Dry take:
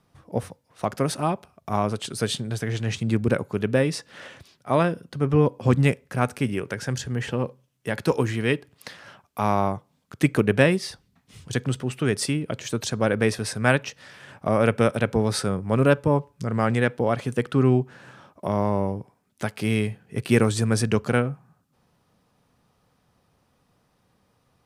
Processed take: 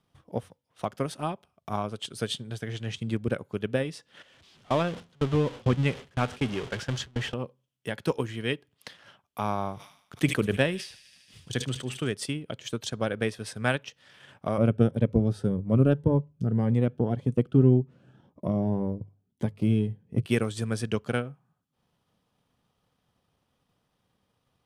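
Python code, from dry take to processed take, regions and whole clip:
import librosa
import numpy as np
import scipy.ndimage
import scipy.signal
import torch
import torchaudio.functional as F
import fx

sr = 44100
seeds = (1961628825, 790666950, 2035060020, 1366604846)

y = fx.chain(x, sr, fx.zero_step(step_db=-23.5),
    fx.lowpass(hz=6700.0, slope=12),
    fx.gate_hold(open_db=-16.0, close_db=-19.0, hold_ms=71.0, range_db=-21, attack_ms=1.4, release_ms=100.0), at=(4.22, 7.34))
y = fx.chain(y, sr, fx.echo_wet_highpass(ms=75, feedback_pct=76, hz=3600.0, wet_db=-8.5),
    fx.sustainer(db_per_s=92.0), at=(9.46, 12.13))
y = fx.chain(y, sr, fx.tilt_shelf(db=9.5, hz=780.0),
    fx.hum_notches(base_hz=50, count=3),
    fx.notch_cascade(direction='rising', hz=1.8), at=(14.58, 20.26))
y = fx.peak_eq(y, sr, hz=3200.0, db=7.5, octaves=0.38)
y = fx.transient(y, sr, attack_db=4, sustain_db=-5)
y = y * 10.0 ** (-8.5 / 20.0)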